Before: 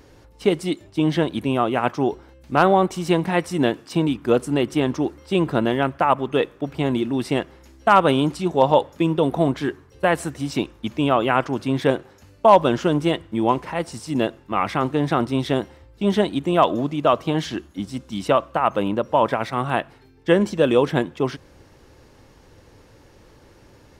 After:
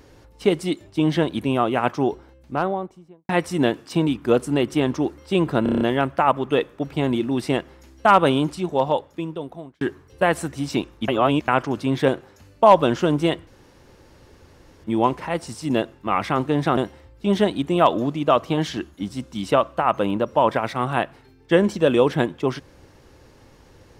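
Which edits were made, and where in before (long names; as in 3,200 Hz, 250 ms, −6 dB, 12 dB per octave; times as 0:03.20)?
0:01.95–0:03.29: fade out and dull
0:05.63: stutter 0.03 s, 7 plays
0:08.04–0:09.63: fade out
0:10.90–0:11.30: reverse
0:13.29: splice in room tone 1.37 s
0:15.22–0:15.54: remove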